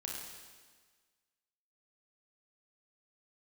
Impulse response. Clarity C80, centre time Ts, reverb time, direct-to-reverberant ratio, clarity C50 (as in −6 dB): 2.0 dB, 82 ms, 1.5 s, −2.5 dB, 0.0 dB